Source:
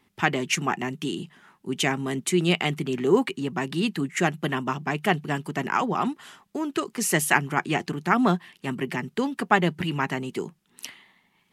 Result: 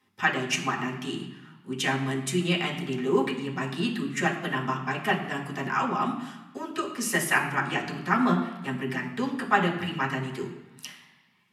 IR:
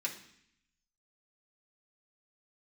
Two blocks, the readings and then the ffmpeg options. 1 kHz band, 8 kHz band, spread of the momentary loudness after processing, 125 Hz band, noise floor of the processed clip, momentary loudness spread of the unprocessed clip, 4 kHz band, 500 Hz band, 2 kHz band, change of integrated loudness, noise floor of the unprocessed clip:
-1.5 dB, -4.5 dB, 13 LU, -2.5 dB, -59 dBFS, 13 LU, -2.0 dB, -3.5 dB, -0.5 dB, -2.0 dB, -68 dBFS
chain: -filter_complex "[1:a]atrim=start_sample=2205,asetrate=29988,aresample=44100[s0];[0:a][s0]afir=irnorm=-1:irlink=0,volume=0.473"

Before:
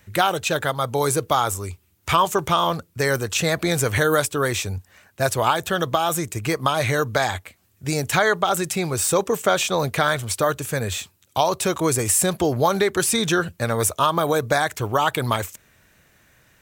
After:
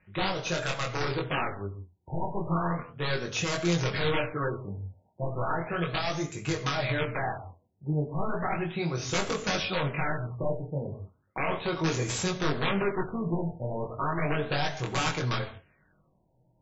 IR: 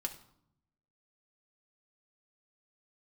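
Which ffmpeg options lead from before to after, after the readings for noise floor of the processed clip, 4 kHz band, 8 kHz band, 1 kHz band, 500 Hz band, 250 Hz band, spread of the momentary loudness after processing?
-69 dBFS, -8.0 dB, -15.5 dB, -11.0 dB, -10.0 dB, -6.0 dB, 9 LU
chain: -filter_complex "[0:a]aeval=exprs='(mod(4.22*val(0)+1,2)-1)/4.22':c=same,flanger=delay=20:depth=4.2:speed=0.63[s0];[1:a]atrim=start_sample=2205,afade=t=out:st=0.2:d=0.01,atrim=end_sample=9261,asetrate=33957,aresample=44100[s1];[s0][s1]afir=irnorm=-1:irlink=0,afftfilt=real='re*lt(b*sr/1024,940*pow(7700/940,0.5+0.5*sin(2*PI*0.35*pts/sr)))':imag='im*lt(b*sr/1024,940*pow(7700/940,0.5+0.5*sin(2*PI*0.35*pts/sr)))':win_size=1024:overlap=0.75,volume=0.501"

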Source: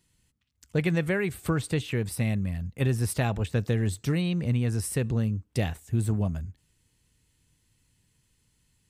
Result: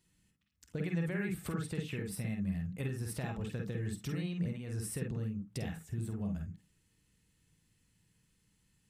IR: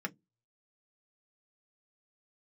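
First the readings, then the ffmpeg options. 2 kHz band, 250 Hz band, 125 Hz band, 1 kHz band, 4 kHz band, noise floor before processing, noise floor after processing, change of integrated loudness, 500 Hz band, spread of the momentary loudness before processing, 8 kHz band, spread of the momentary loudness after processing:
-10.5 dB, -8.0 dB, -10.5 dB, -12.0 dB, -11.0 dB, -71 dBFS, -74 dBFS, -10.0 dB, -11.5 dB, 5 LU, -9.0 dB, 5 LU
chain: -filter_complex "[0:a]acompressor=threshold=0.0282:ratio=6,asplit=2[s0][s1];[1:a]atrim=start_sample=2205,adelay=48[s2];[s1][s2]afir=irnorm=-1:irlink=0,volume=0.668[s3];[s0][s3]amix=inputs=2:normalize=0,volume=0.531"

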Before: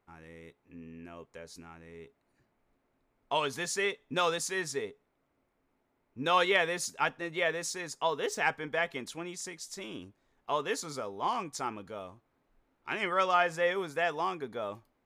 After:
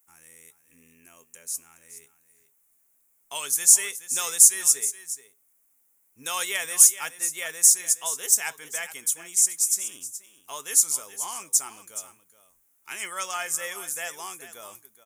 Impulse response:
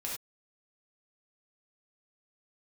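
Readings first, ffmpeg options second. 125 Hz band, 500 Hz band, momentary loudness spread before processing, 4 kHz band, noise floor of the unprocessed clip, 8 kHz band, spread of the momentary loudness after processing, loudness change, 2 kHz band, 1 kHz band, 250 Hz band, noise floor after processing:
under -10 dB, -11.0 dB, 21 LU, +3.5 dB, -77 dBFS, +23.0 dB, 21 LU, +10.5 dB, -1.5 dB, -6.5 dB, under -10 dB, -66 dBFS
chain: -af "tiltshelf=f=1300:g=-9,aecho=1:1:423:0.211,aexciter=amount=14.3:drive=4.9:freq=6400,volume=0.562"

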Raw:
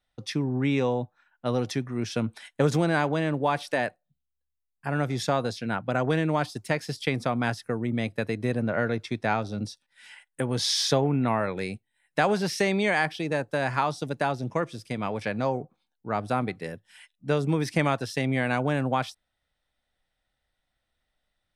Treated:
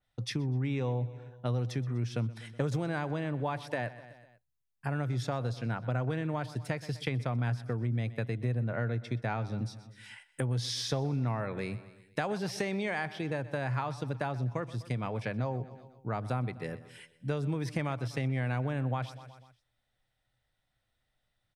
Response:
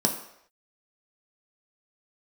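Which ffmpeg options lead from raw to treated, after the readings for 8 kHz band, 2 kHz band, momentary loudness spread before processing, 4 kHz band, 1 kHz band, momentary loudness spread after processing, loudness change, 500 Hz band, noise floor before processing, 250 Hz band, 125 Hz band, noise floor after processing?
-9.5 dB, -9.0 dB, 10 LU, -9.5 dB, -9.5 dB, 8 LU, -6.5 dB, -9.0 dB, -81 dBFS, -8.0 dB, -1.0 dB, -80 dBFS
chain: -filter_complex "[0:a]equalizer=f=120:t=o:w=0.36:g=13.5,asplit=2[s0][s1];[s1]aecho=0:1:124|248|372|496:0.112|0.0595|0.0315|0.0167[s2];[s0][s2]amix=inputs=2:normalize=0,acompressor=threshold=0.0282:ratio=2.5,adynamicequalizer=threshold=0.00251:dfrequency=3500:dqfactor=0.7:tfrequency=3500:tqfactor=0.7:attack=5:release=100:ratio=0.375:range=2.5:mode=cutabove:tftype=highshelf,volume=0.841"

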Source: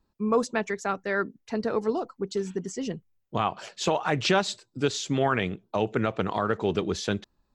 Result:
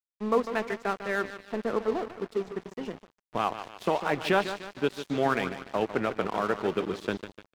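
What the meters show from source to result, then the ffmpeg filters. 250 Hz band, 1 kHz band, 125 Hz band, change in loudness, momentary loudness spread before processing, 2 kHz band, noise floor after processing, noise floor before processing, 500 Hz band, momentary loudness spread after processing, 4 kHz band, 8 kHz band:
-3.0 dB, -1.0 dB, -7.5 dB, -2.0 dB, 8 LU, -1.0 dB, under -85 dBFS, -75 dBFS, -1.5 dB, 10 LU, -6.0 dB, -12.0 dB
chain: -af "areverse,acompressor=mode=upward:threshold=0.00794:ratio=2.5,areverse,acrusher=bits=8:dc=4:mix=0:aa=0.000001,highpass=190,lowpass=2900,aecho=1:1:149|298|447|596|745|894|1043:0.335|0.191|0.109|0.062|0.0354|0.0202|0.0115,aeval=exprs='sgn(val(0))*max(abs(val(0))-0.0133,0)':c=same"

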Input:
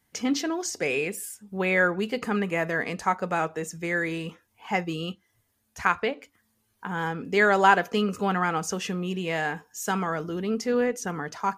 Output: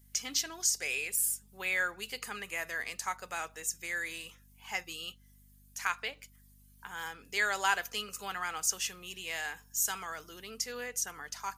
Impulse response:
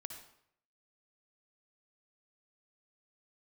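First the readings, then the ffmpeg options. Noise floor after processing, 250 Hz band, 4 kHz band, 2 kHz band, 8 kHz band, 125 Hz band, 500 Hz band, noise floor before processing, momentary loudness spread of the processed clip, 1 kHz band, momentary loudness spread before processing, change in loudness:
-61 dBFS, -24.0 dB, -1.0 dB, -7.0 dB, +4.5 dB, -23.0 dB, -18.0 dB, -72 dBFS, 13 LU, -12.0 dB, 11 LU, -7.5 dB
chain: -af "aderivative,aeval=exprs='val(0)+0.000562*(sin(2*PI*50*n/s)+sin(2*PI*2*50*n/s)/2+sin(2*PI*3*50*n/s)/3+sin(2*PI*4*50*n/s)/4+sin(2*PI*5*50*n/s)/5)':c=same,volume=1.78"

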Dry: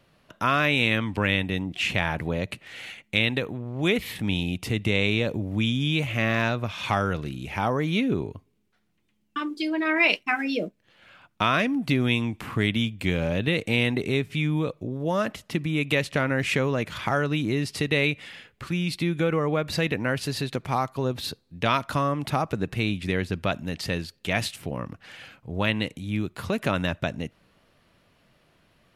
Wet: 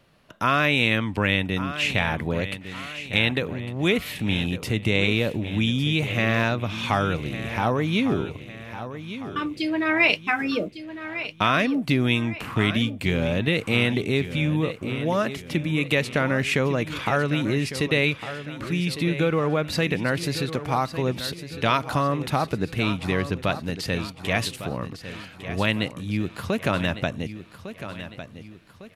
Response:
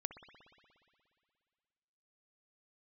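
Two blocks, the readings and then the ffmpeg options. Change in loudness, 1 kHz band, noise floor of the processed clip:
+1.5 dB, +2.0 dB, -44 dBFS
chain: -af "aecho=1:1:1154|2308|3462|4616|5770:0.251|0.113|0.0509|0.0229|0.0103,volume=1.19"

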